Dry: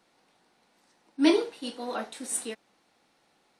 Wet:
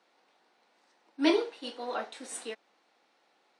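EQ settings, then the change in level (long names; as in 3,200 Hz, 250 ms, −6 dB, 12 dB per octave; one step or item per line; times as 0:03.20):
high-pass filter 360 Hz 12 dB per octave
high-frequency loss of the air 78 metres
0.0 dB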